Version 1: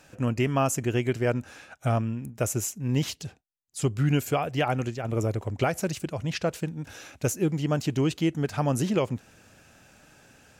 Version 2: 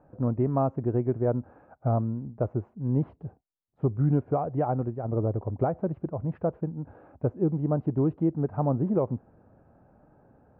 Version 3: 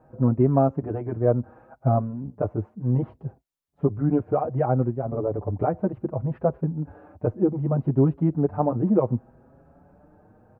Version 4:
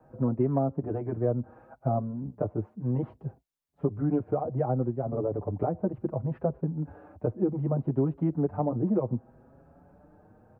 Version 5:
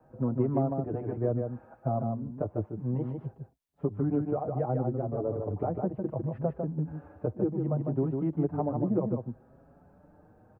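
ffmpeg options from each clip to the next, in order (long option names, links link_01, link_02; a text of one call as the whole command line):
ffmpeg -i in.wav -af "lowpass=frequency=1000:width=0.5412,lowpass=frequency=1000:width=1.3066" out.wav
ffmpeg -i in.wav -filter_complex "[0:a]asplit=2[link_01][link_02];[link_02]adelay=5.9,afreqshift=0.66[link_03];[link_01][link_03]amix=inputs=2:normalize=1,volume=7dB" out.wav
ffmpeg -i in.wav -filter_complex "[0:a]acrossover=split=100|290|1100[link_01][link_02][link_03][link_04];[link_01]acompressor=threshold=-44dB:ratio=4[link_05];[link_02]acompressor=threshold=-26dB:ratio=4[link_06];[link_03]acompressor=threshold=-24dB:ratio=4[link_07];[link_04]acompressor=threshold=-53dB:ratio=4[link_08];[link_05][link_06][link_07][link_08]amix=inputs=4:normalize=0,volume=-2dB" out.wav
ffmpeg -i in.wav -af "aecho=1:1:151:0.562,volume=-2.5dB" out.wav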